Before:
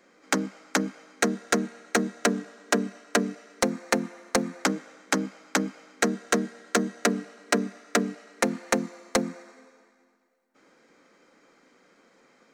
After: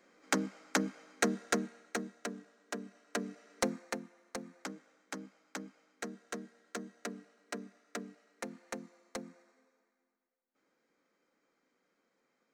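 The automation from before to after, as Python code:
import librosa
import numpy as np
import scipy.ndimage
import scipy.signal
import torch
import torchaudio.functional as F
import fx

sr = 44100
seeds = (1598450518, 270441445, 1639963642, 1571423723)

y = fx.gain(x, sr, db=fx.line((1.41, -6.0), (2.26, -17.0), (2.81, -17.0), (3.66, -7.5), (4.06, -18.0)))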